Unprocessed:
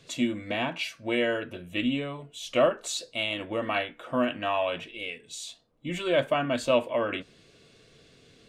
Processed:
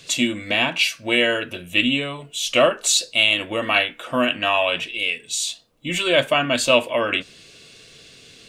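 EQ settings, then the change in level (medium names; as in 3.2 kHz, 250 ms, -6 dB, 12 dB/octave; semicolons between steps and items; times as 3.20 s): treble shelf 2.1 kHz +12 dB; peaking EQ 2.7 kHz +3.5 dB 0.21 oct; +4.5 dB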